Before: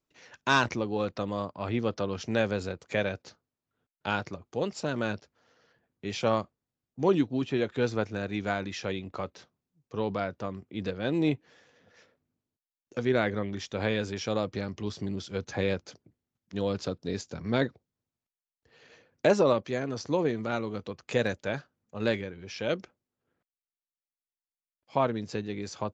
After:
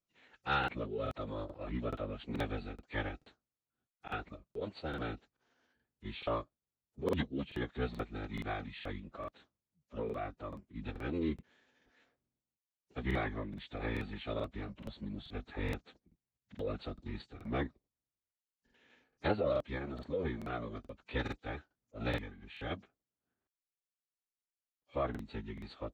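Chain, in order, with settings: formant-preserving pitch shift -11.5 st; crackling interface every 0.43 s, samples 2048, repeat, from 0.59 s; trim -8 dB

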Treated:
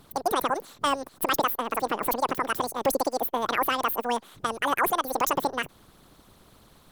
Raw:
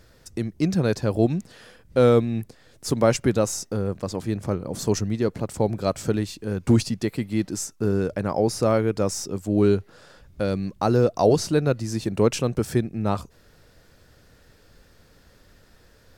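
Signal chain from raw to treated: harmonic-percussive split harmonic -14 dB; peak limiter -18 dBFS, peak gain reduction 9 dB; speed mistake 33 rpm record played at 78 rpm; trim +4 dB

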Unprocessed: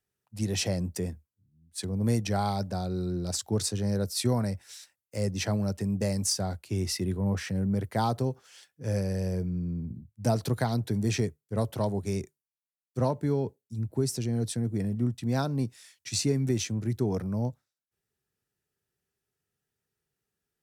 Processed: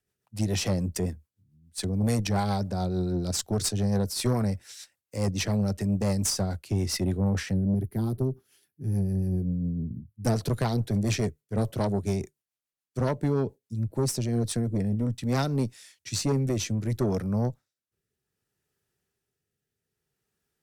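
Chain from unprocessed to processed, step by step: rotary cabinet horn 7 Hz, later 0.6 Hz, at 13.95 s; time-frequency box 7.54–10.26 s, 420–9400 Hz -16 dB; Chebyshev shaper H 5 -16 dB, 6 -19 dB, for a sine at -15 dBFS

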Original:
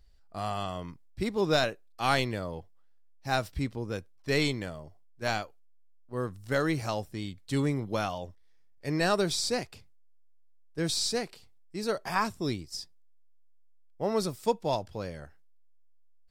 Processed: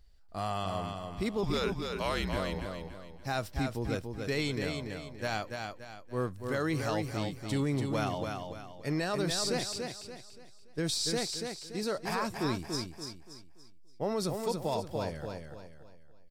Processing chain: peak limiter -22.5 dBFS, peak gain reduction 9 dB; 1.43–2.37 s: frequency shift -180 Hz; on a send: feedback delay 287 ms, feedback 37%, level -5 dB

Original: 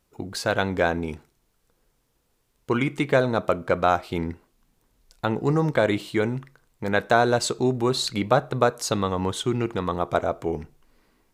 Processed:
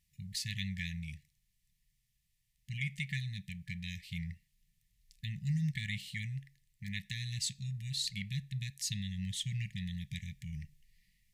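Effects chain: gain riding within 3 dB 2 s; brick-wall FIR band-stop 200–1700 Hz; trim -7.5 dB

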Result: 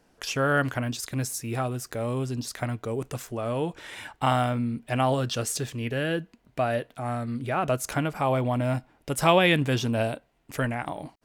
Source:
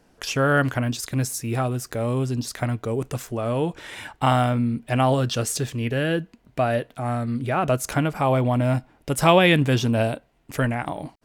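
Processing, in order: bass shelf 350 Hz -3 dB; trim -3 dB

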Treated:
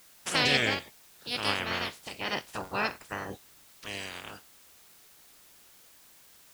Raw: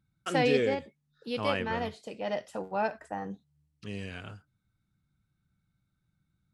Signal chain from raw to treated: spectral peaks clipped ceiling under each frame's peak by 27 dB; added noise white -57 dBFS

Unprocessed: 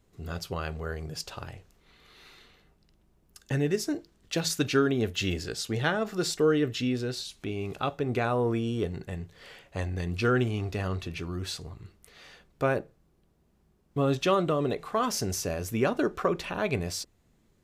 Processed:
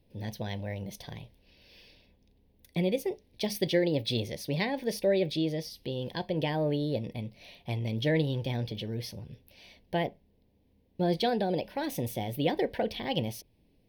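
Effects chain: static phaser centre 2.5 kHz, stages 4; tape speed +27%

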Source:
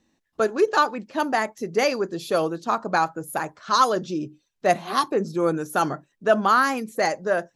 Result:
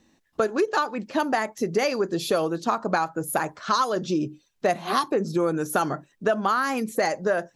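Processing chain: compression 6:1, threshold -26 dBFS, peak gain reduction 13 dB; trim +6 dB

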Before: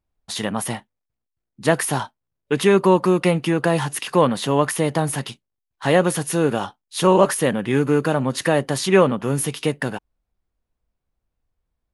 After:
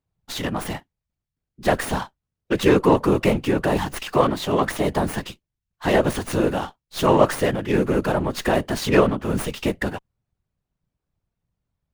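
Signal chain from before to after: whisper effect; 4.12–4.88 s: frequency shift +38 Hz; sliding maximum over 3 samples; trim -1.5 dB

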